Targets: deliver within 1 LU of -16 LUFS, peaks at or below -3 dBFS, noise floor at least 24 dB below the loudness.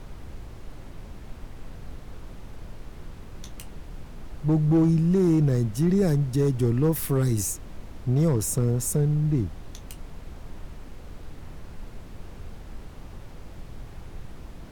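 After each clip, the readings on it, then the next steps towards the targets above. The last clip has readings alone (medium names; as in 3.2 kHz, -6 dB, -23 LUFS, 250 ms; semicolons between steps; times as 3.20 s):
clipped samples 0.5%; clipping level -14.5 dBFS; noise floor -43 dBFS; noise floor target -48 dBFS; loudness -23.5 LUFS; peak level -14.5 dBFS; loudness target -16.0 LUFS
-> clip repair -14.5 dBFS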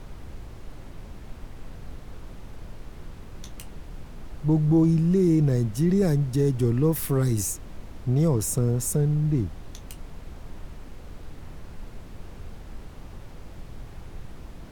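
clipped samples 0.0%; noise floor -43 dBFS; noise floor target -48 dBFS
-> noise print and reduce 6 dB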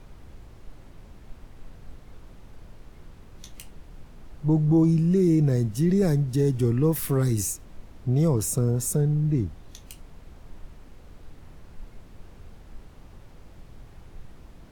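noise floor -49 dBFS; loudness -23.5 LUFS; peak level -11.0 dBFS; loudness target -16.0 LUFS
-> trim +7.5 dB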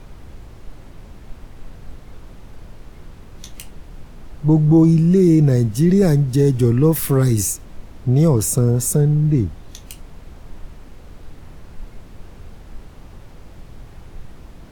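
loudness -16.0 LUFS; peak level -3.5 dBFS; noise floor -41 dBFS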